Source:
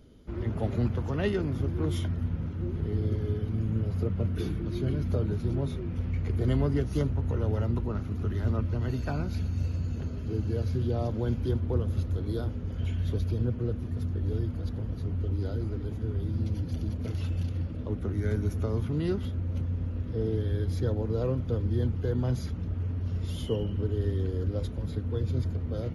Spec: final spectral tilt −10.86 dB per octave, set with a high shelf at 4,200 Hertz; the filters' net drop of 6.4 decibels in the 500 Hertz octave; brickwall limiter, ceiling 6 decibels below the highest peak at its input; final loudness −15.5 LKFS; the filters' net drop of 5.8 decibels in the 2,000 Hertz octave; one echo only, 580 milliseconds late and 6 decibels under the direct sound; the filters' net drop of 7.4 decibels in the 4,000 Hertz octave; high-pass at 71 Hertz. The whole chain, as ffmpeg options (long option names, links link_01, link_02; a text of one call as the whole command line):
ffmpeg -i in.wav -af "highpass=71,equalizer=frequency=500:width_type=o:gain=-8,equalizer=frequency=2000:width_type=o:gain=-5,equalizer=frequency=4000:width_type=o:gain=-4,highshelf=frequency=4200:gain=-7,alimiter=limit=-23dB:level=0:latency=1,aecho=1:1:580:0.501,volume=16.5dB" out.wav